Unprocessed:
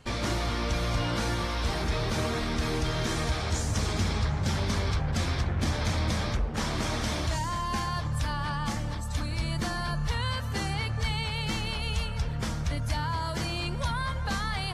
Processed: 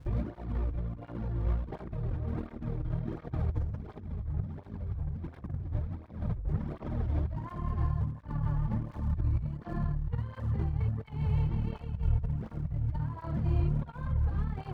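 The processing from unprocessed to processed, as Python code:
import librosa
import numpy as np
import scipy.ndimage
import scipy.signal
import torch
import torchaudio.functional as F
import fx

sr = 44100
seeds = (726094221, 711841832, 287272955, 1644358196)

p1 = x + fx.echo_wet_bandpass(x, sr, ms=412, feedback_pct=84, hz=1500.0, wet_db=-14.5, dry=0)
p2 = fx.tube_stage(p1, sr, drive_db=23.0, bias=0.7)
p3 = fx.spacing_loss(p2, sr, db_at_10k=34)
p4 = fx.dmg_crackle(p3, sr, seeds[0], per_s=240.0, level_db=-40.0)
p5 = fx.over_compress(p4, sr, threshold_db=-37.0, ratio=-0.5)
p6 = fx.tilt_eq(p5, sr, slope=-4.0)
p7 = fx.flanger_cancel(p6, sr, hz=1.4, depth_ms=5.3)
y = p7 * 10.0 ** (-3.0 / 20.0)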